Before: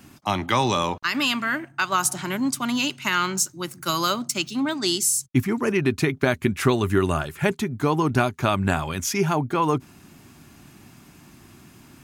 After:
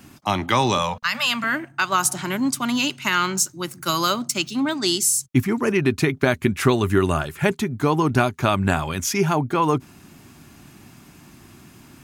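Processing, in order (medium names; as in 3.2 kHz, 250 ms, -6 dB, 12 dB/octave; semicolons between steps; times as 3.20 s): 0.78–1.44 s: elliptic band-stop 230–470 Hz; trim +2 dB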